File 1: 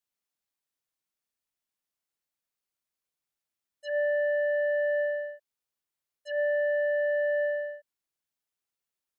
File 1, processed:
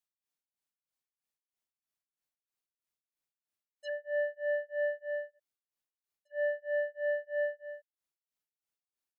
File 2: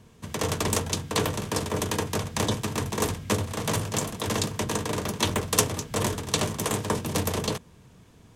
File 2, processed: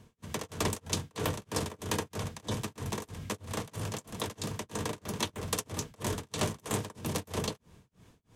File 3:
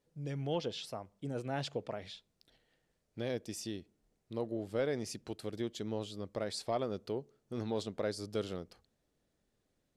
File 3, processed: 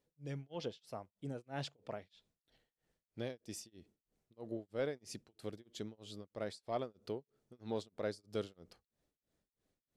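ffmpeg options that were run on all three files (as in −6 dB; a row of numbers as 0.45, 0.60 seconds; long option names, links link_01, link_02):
-af "tremolo=f=3.1:d=0.99,volume=-2.5dB"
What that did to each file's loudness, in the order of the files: −6.5, −8.0, −5.5 LU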